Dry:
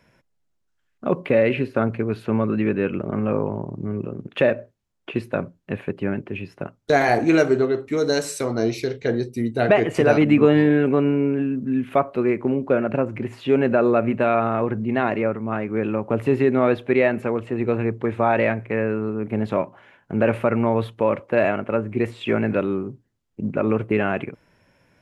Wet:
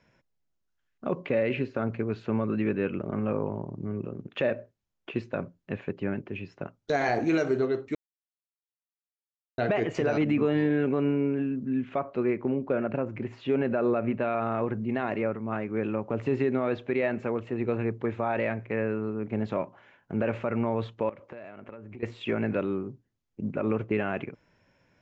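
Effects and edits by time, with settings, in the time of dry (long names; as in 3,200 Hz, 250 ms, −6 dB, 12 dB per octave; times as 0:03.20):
0:07.95–0:09.58: silence
0:11.66–0:14.33: high-shelf EQ 6,600 Hz −9 dB
0:21.09–0:22.03: downward compressor 12 to 1, threshold −33 dBFS
whole clip: Butterworth low-pass 7,300 Hz 72 dB per octave; brickwall limiter −10.5 dBFS; level −6 dB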